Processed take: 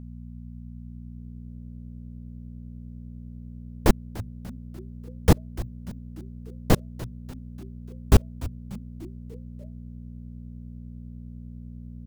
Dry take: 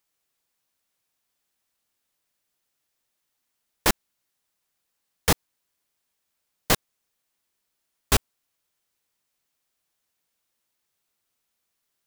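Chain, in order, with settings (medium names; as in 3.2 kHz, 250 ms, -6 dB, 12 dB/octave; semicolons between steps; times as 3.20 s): tilt shelf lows +9.5 dB, about 690 Hz; mains buzz 60 Hz, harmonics 4, -40 dBFS -3 dB/octave; frequency-shifting echo 294 ms, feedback 53%, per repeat -130 Hz, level -17 dB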